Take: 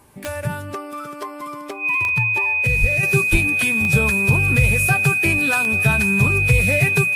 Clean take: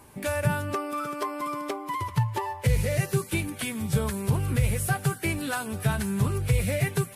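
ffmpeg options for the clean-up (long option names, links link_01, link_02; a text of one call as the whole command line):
ffmpeg -i in.wav -filter_complex "[0:a]adeclick=threshold=4,bandreject=frequency=2500:width=30,asplit=3[link_01][link_02][link_03];[link_01]afade=type=out:start_time=2.8:duration=0.02[link_04];[link_02]highpass=frequency=140:width=0.5412,highpass=frequency=140:width=1.3066,afade=type=in:start_time=2.8:duration=0.02,afade=type=out:start_time=2.92:duration=0.02[link_05];[link_03]afade=type=in:start_time=2.92:duration=0.02[link_06];[link_04][link_05][link_06]amix=inputs=3:normalize=0,asplit=3[link_07][link_08][link_09];[link_07]afade=type=out:start_time=3.31:duration=0.02[link_10];[link_08]highpass=frequency=140:width=0.5412,highpass=frequency=140:width=1.3066,afade=type=in:start_time=3.31:duration=0.02,afade=type=out:start_time=3.43:duration=0.02[link_11];[link_09]afade=type=in:start_time=3.43:duration=0.02[link_12];[link_10][link_11][link_12]amix=inputs=3:normalize=0,asetnsamples=nb_out_samples=441:pad=0,asendcmd='3.03 volume volume -6.5dB',volume=0dB" out.wav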